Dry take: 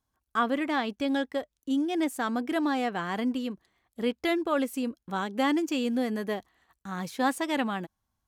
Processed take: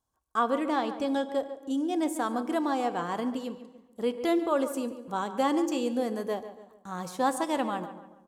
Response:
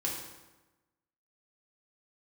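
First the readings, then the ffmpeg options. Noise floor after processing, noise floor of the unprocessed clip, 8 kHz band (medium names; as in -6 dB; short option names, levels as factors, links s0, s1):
-63 dBFS, -83 dBFS, +2.0 dB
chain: -filter_complex "[0:a]equalizer=f=500:t=o:w=1:g=5,equalizer=f=1000:t=o:w=1:g=6,equalizer=f=2000:t=o:w=1:g=-5,equalizer=f=8000:t=o:w=1:g=7,asplit=2[s0][s1];[s1]adelay=143,lowpass=f=2600:p=1,volume=0.251,asplit=2[s2][s3];[s3]adelay=143,lowpass=f=2600:p=1,volume=0.42,asplit=2[s4][s5];[s5]adelay=143,lowpass=f=2600:p=1,volume=0.42,asplit=2[s6][s7];[s7]adelay=143,lowpass=f=2600:p=1,volume=0.42[s8];[s0][s2][s4][s6][s8]amix=inputs=5:normalize=0,asplit=2[s9][s10];[1:a]atrim=start_sample=2205[s11];[s10][s11]afir=irnorm=-1:irlink=0,volume=0.188[s12];[s9][s12]amix=inputs=2:normalize=0,volume=0.531"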